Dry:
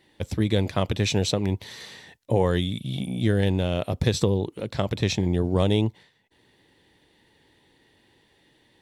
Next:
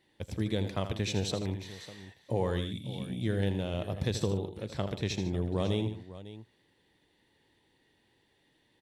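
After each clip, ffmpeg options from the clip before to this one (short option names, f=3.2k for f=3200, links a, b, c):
-af "aecho=1:1:81|147|550:0.316|0.158|0.168,volume=-9dB"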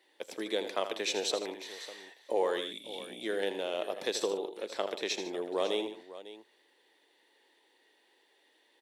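-af "highpass=f=370:w=0.5412,highpass=f=370:w=1.3066,volume=3.5dB"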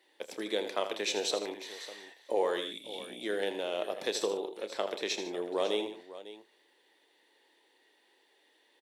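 -filter_complex "[0:a]asplit=2[a][b];[b]adelay=29,volume=-13dB[c];[a][c]amix=inputs=2:normalize=0"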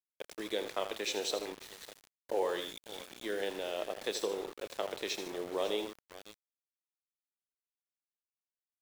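-af "aeval=exprs='val(0)*gte(abs(val(0)),0.01)':c=same,volume=-3dB"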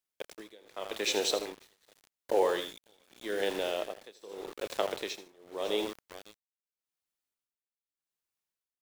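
-af "tremolo=f=0.84:d=0.96,volume=6dB"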